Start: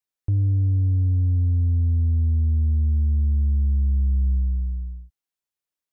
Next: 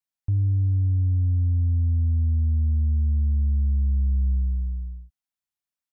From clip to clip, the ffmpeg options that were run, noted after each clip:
-af "firequalizer=gain_entry='entry(240,0);entry(400,-13);entry(660,-2)':delay=0.05:min_phase=1,volume=-1.5dB"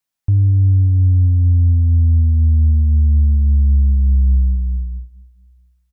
-af "aecho=1:1:227|454|681|908:0.0794|0.0445|0.0249|0.0139,volume=9dB"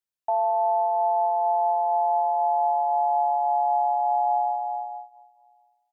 -af "aeval=exprs='val(0)*sin(2*PI*780*n/s)':c=same,volume=-8dB"

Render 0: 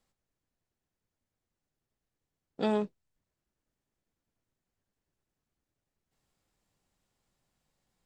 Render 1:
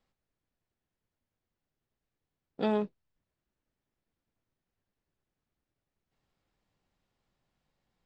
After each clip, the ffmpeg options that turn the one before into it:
-af "lowpass=4.3k"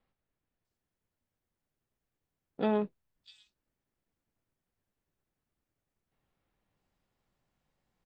-filter_complex "[0:a]acrossover=split=4100[a][b];[b]adelay=650[c];[a][c]amix=inputs=2:normalize=0"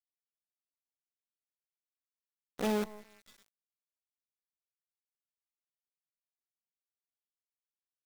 -filter_complex "[0:a]asplit=2[a][b];[b]adelay=183,lowpass=f=1.9k:p=1,volume=-15dB,asplit=2[c][d];[d]adelay=183,lowpass=f=1.9k:p=1,volume=0.19[e];[a][c][e]amix=inputs=3:normalize=0,aeval=exprs='val(0)+0.00126*sin(2*PI*2000*n/s)':c=same,acrusher=bits=6:dc=4:mix=0:aa=0.000001,volume=-3dB"

